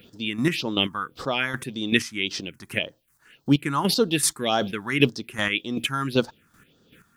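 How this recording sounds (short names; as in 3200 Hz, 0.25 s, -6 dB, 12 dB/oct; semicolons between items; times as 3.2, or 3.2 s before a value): a quantiser's noise floor 12-bit, dither triangular; phasing stages 4, 1.8 Hz, lowest notch 450–2400 Hz; chopped level 2.6 Hz, depth 60%, duty 25%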